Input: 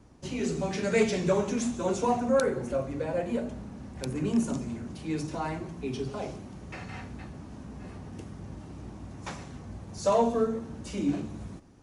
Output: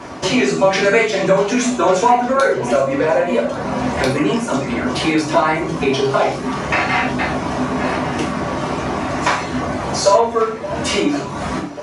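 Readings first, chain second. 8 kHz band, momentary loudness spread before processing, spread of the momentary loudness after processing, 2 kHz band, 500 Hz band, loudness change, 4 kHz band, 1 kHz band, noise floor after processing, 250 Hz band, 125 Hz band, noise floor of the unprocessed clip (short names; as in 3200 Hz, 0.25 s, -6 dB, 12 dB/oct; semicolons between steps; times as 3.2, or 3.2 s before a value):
+14.5 dB, 18 LU, 7 LU, +20.0 dB, +13.5 dB, +13.0 dB, +19.5 dB, +17.5 dB, -26 dBFS, +11.5 dB, +10.5 dB, -45 dBFS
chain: HPF 83 Hz; reverb removal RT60 0.66 s; low shelf 360 Hz -8.5 dB; notches 60/120/180/240/300/360/420/480/540 Hz; compressor 6:1, threshold -46 dBFS, peak gain reduction 21 dB; overdrive pedal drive 7 dB, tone 1700 Hz, clips at -28 dBFS; on a send: echo with dull and thin repeats by turns 0.571 s, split 1000 Hz, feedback 75%, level -14 dB; on the sum: non-linear reverb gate 0.15 s falling, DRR -2.5 dB; maximiser +30.5 dB; gain -1 dB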